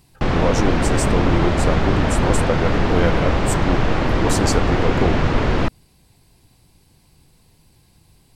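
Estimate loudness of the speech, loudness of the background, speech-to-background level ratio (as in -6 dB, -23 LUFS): -24.5 LUFS, -20.0 LUFS, -4.5 dB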